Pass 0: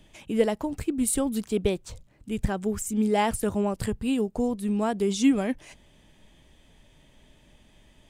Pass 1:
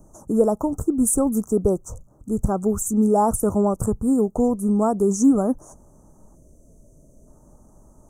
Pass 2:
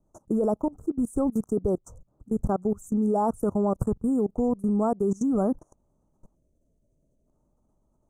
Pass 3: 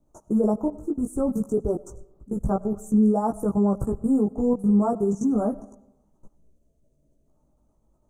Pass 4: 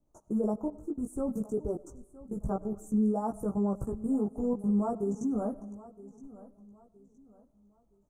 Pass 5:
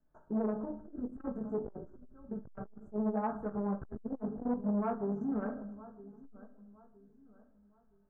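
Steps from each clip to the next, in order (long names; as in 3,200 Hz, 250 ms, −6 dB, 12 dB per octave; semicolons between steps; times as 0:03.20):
Chebyshev band-stop filter 1,300–6,100 Hz, order 4; in parallel at −0.5 dB: brickwall limiter −19 dBFS, peak gain reduction 8.5 dB; on the sum: gain on a spectral selection 0:06.36–0:07.27, 700–4,300 Hz −16 dB; level +1.5 dB
high-shelf EQ 2,800 Hz −9 dB; output level in coarse steps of 23 dB
in parallel at −0.5 dB: brickwall limiter −21.5 dBFS, peak gain reduction 8 dB; on the sum: multi-voice chorus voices 4, 0.29 Hz, delay 17 ms, depth 3.5 ms; convolution reverb RT60 0.85 s, pre-delay 55 ms, DRR 19.5 dB
repeating echo 967 ms, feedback 33%, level −18.5 dB; level −8 dB
low-pass with resonance 1,600 Hz, resonance Q 11; rectangular room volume 680 cubic metres, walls furnished, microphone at 1.5 metres; saturating transformer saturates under 410 Hz; level −6 dB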